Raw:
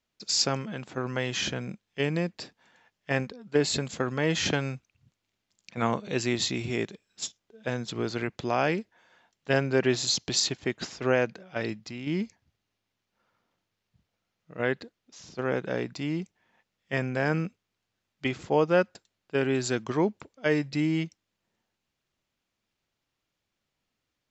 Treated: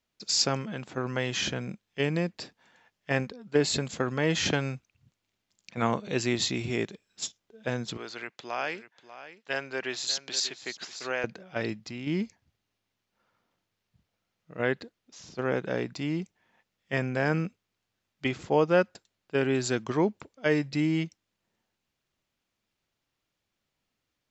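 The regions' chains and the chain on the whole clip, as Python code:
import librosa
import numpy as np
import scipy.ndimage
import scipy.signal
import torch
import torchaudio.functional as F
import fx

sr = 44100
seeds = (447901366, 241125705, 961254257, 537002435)

y = fx.chain(x, sr, fx.highpass(hz=1400.0, slope=6),
    fx.high_shelf(hz=5600.0, db=-6.5),
    fx.echo_single(ms=592, db=-14.0), at=(7.97, 11.24))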